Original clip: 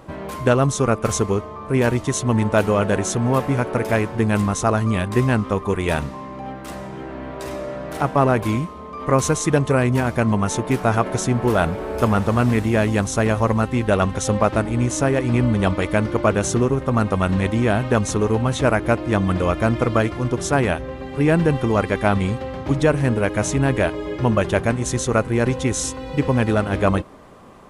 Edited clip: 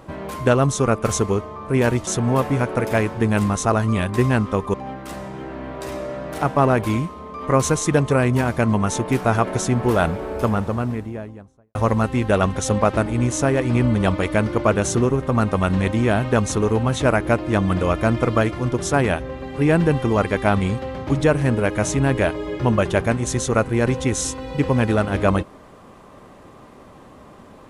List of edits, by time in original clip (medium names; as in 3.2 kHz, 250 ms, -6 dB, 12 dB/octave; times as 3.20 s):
2.07–3.05 s: delete
5.72–6.33 s: delete
11.55–13.34 s: studio fade out